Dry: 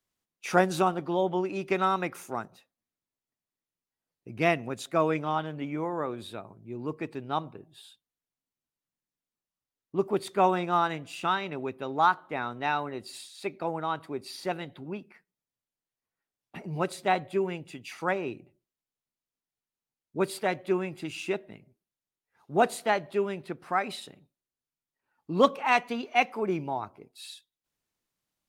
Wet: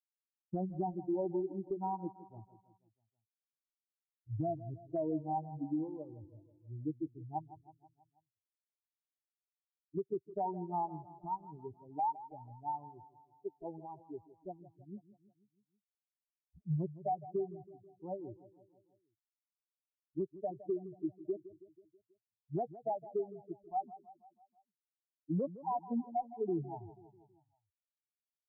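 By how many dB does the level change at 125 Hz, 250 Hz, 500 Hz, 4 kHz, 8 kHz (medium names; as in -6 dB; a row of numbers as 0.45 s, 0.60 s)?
-5.0 dB, -7.0 dB, -10.5 dB, under -40 dB, under -35 dB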